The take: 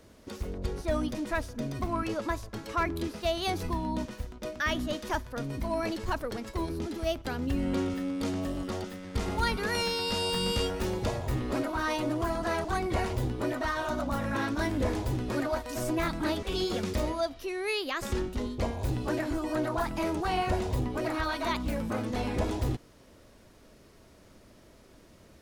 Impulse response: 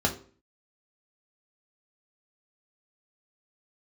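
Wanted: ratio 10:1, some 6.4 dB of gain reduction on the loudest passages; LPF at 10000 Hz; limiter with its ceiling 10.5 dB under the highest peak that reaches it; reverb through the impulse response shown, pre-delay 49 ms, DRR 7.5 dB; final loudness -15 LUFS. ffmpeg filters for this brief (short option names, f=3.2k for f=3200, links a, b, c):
-filter_complex "[0:a]lowpass=10k,acompressor=threshold=-31dB:ratio=10,alimiter=level_in=7dB:limit=-24dB:level=0:latency=1,volume=-7dB,asplit=2[a][b];[1:a]atrim=start_sample=2205,adelay=49[c];[b][c]afir=irnorm=-1:irlink=0,volume=-18.5dB[d];[a][d]amix=inputs=2:normalize=0,volume=23.5dB"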